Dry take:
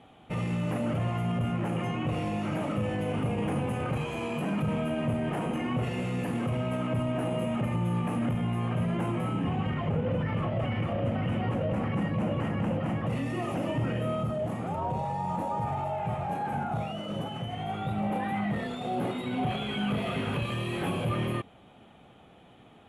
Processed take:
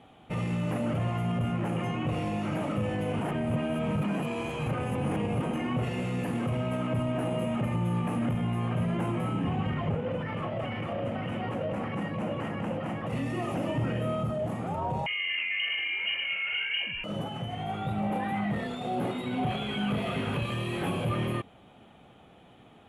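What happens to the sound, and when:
3.21–5.43 s: reverse
9.95–13.13 s: bass shelf 160 Hz -10.5 dB
15.06–17.04 s: frequency inversion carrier 3 kHz

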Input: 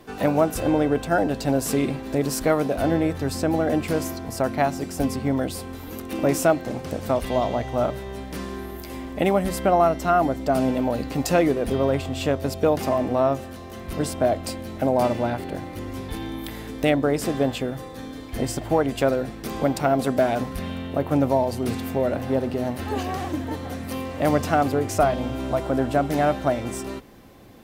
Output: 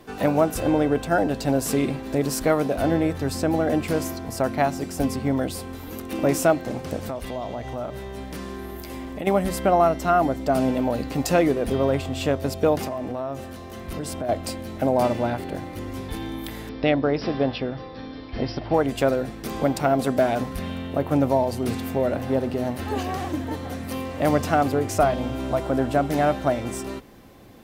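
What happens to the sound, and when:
7.08–9.27 s: compression 3:1, threshold -29 dBFS
12.84–14.29 s: compression 5:1, threshold -26 dBFS
16.69–18.74 s: Chebyshev low-pass 5.6 kHz, order 10

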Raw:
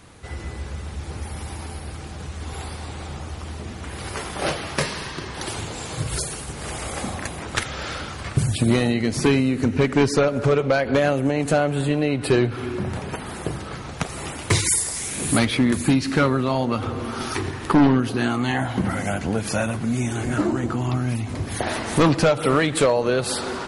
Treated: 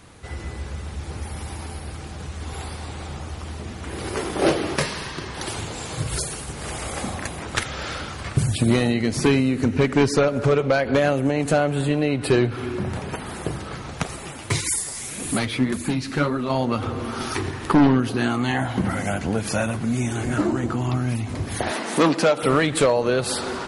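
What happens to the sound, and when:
3.86–4.75 s: peaking EQ 350 Hz +6.5 dB -> +14.5 dB 1.2 oct
14.16–16.50 s: flange 1.8 Hz, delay 2.7 ms, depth 7.1 ms, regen +29%
21.71–22.43 s: high-pass 190 Hz 24 dB/octave

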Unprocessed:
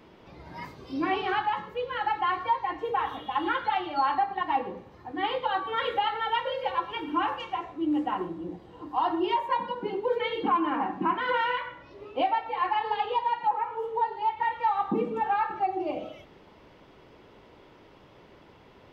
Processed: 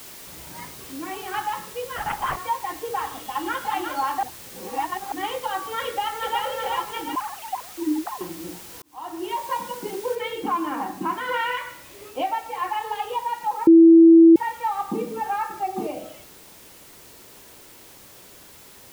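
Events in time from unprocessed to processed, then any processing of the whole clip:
0.81–1.34 s: compression 1.5:1, threshold -40 dBFS
1.96–2.37 s: LPC vocoder at 8 kHz whisper
3.16–3.68 s: echo throw 360 ms, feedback 15%, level -5 dB
4.23–5.12 s: reverse
5.85–6.44 s: echo throw 370 ms, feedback 55%, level -2.5 dB
7.15–8.21 s: formants replaced by sine waves
8.82–9.47 s: fade in
10.15 s: noise floor step -42 dB -48 dB
11.32–12.10 s: peaking EQ 2.3 kHz +4.5 dB 1.2 oct
12.70–13.10 s: peaking EQ 210 Hz -8 dB
13.67–14.36 s: bleep 330 Hz -7 dBFS
14.90–15.87 s: delay 863 ms -4 dB

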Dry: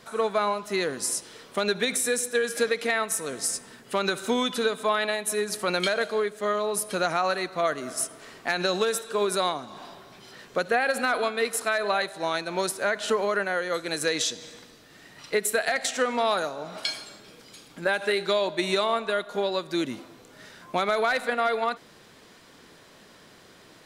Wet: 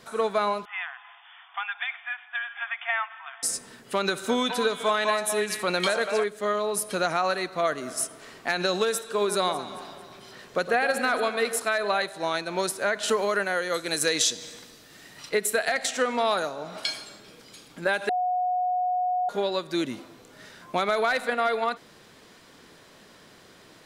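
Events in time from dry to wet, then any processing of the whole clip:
0.65–3.43 s: brick-wall FIR band-pass 680–3600 Hz
4.07–6.24 s: repeats whose band climbs or falls 209 ms, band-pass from 900 Hz, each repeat 1.4 oct, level -1 dB
9.18–11.59 s: echo whose repeats swap between lows and highs 112 ms, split 1.5 kHz, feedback 68%, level -10.5 dB
13.03–15.29 s: treble shelf 4.4 kHz +7 dB
18.09–19.29 s: bleep 728 Hz -22.5 dBFS

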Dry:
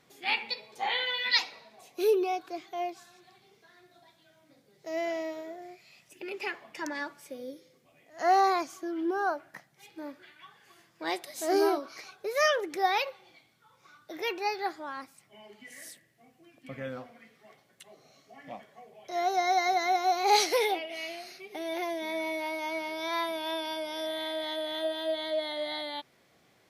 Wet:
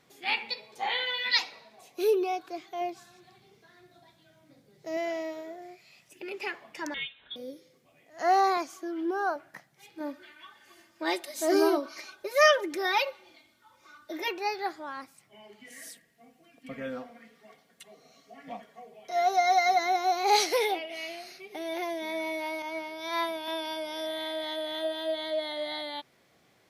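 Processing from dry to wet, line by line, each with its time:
2.81–4.97 s: bass shelf 230 Hz +9 dB
6.94–7.36 s: frequency inversion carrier 3.9 kHz
8.57–9.36 s: high-pass 190 Hz
10.00–14.28 s: comb 3.3 ms, depth 89%
15.65–19.79 s: comb 4.3 ms
22.62–23.48 s: three bands expanded up and down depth 100%

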